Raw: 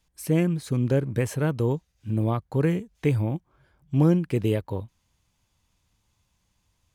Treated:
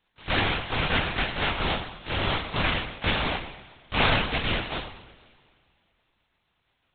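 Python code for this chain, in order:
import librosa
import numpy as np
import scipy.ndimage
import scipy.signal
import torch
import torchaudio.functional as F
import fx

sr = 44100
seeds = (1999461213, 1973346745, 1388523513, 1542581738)

y = fx.spec_flatten(x, sr, power=0.18)
y = fx.rev_double_slope(y, sr, seeds[0], early_s=0.82, late_s=2.4, knee_db=-17, drr_db=2.0)
y = fx.lpc_vocoder(y, sr, seeds[1], excitation='whisper', order=10)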